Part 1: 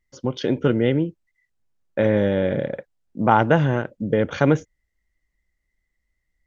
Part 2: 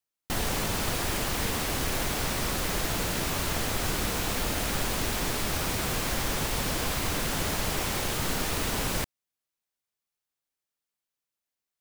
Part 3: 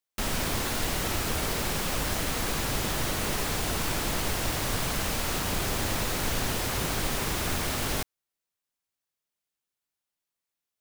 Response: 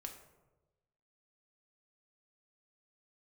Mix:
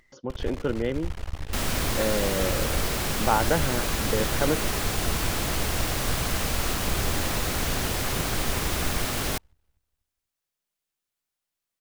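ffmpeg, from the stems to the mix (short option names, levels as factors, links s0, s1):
-filter_complex "[0:a]lowpass=f=3200:p=1,lowshelf=f=180:g=-11,acompressor=mode=upward:threshold=0.0112:ratio=2.5,volume=0.531[s0];[1:a]lowshelf=f=100:t=q:w=3:g=11,aeval=exprs='max(val(0),0)':c=same,aemphasis=mode=reproduction:type=50fm,volume=0.376,asplit=2[s1][s2];[s2]volume=0.0794[s3];[2:a]bandreject=f=910:w=22,adelay=1350,volume=1.19[s4];[s3]aecho=0:1:243|486|729|972|1215:1|0.34|0.116|0.0393|0.0134[s5];[s0][s1][s4][s5]amix=inputs=4:normalize=0"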